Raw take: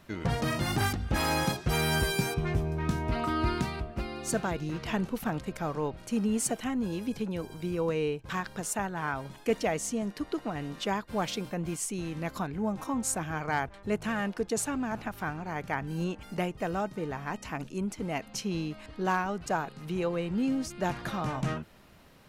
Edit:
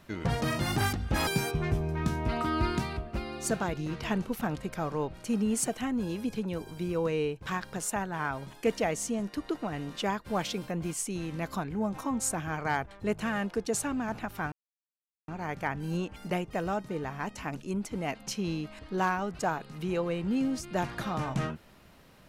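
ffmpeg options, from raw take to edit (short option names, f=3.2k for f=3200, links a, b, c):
-filter_complex "[0:a]asplit=3[a][b][c];[a]atrim=end=1.272[d];[b]atrim=start=2.098:end=15.35,asetpts=PTS-STARTPTS,afade=t=out:st=13.248:d=0.004:c=hsin,apad=pad_dur=0.76[e];[c]atrim=start=15.35,asetpts=PTS-STARTPTS,afade=t=in:d=0.004:c=hsin[f];[e][f]concat=n=2:v=0:a=1[g];[d][g]acrossfade=d=0.004:c1=hsin:c2=hsin"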